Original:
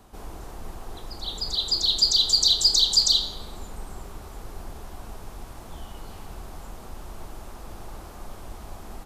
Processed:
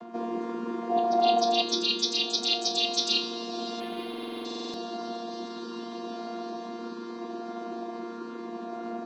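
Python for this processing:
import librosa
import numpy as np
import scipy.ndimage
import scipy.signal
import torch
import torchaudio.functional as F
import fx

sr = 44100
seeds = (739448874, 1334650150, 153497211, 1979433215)

y = fx.chord_vocoder(x, sr, chord='bare fifth', root=58)
y = fx.peak_eq(y, sr, hz=730.0, db=14.5, octaves=0.4, at=(0.9, 1.62))
y = fx.rider(y, sr, range_db=4, speed_s=0.5)
y = fx.air_absorb(y, sr, metres=130.0)
y = fx.echo_diffused(y, sr, ms=1380, feedback_pct=41, wet_db=-13.0)
y = fx.buffer_glitch(y, sr, at_s=(4.09,), block=2048, repeats=13)
y = fx.resample_linear(y, sr, factor=6, at=(3.8, 4.45))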